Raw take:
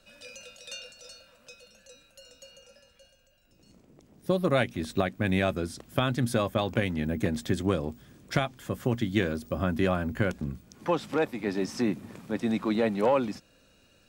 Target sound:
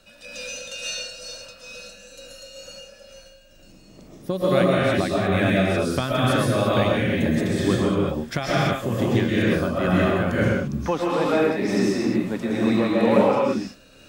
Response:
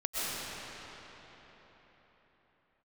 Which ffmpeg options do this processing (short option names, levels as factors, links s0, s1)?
-filter_complex "[1:a]atrim=start_sample=2205,afade=t=out:st=0.4:d=0.01,atrim=end_sample=18081,asetrate=42777,aresample=44100[s0];[0:a][s0]afir=irnorm=-1:irlink=0,tremolo=f=2.2:d=0.36,asplit=2[s1][s2];[s2]acompressor=threshold=0.0282:ratio=6,volume=1.26[s3];[s1][s3]amix=inputs=2:normalize=0"